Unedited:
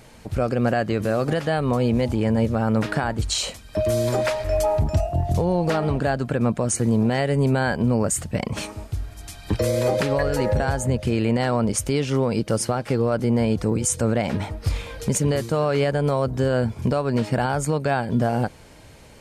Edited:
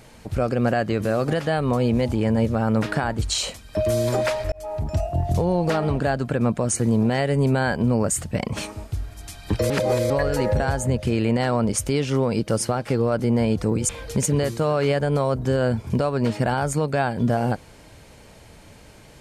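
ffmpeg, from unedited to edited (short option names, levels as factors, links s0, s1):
-filter_complex "[0:a]asplit=5[s0][s1][s2][s3][s4];[s0]atrim=end=4.52,asetpts=PTS-STARTPTS,afade=t=out:st=4.516:d=0.004:c=hsin[s5];[s1]atrim=start=4.52:end=9.702,asetpts=PTS-STARTPTS,afade=t=in:d=0.84:c=qsin[s6];[s2]atrim=start=9.698:end=10.102,asetpts=PTS-STARTPTS,areverse[s7];[s3]atrim=start=10.098:end=13.892[s8];[s4]atrim=start=14.808[s9];[s5][s6]concat=n=2:v=0:a=1[s10];[s10][s7]acrossfade=d=0.004:c1=hsin:c2=hsin[s11];[s11][s8]acrossfade=d=0.004:c1=hsin:c2=hsin[s12];[s12][s9]acrossfade=d=0.004:c1=hsin:c2=hsin"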